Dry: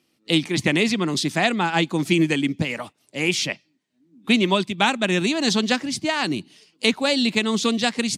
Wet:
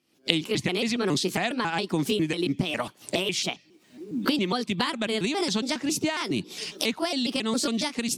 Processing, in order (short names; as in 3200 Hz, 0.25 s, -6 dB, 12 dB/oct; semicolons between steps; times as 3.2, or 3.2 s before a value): trilling pitch shifter +3.5 st, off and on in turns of 0.137 s; recorder AGC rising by 71 dB/s; gain -8 dB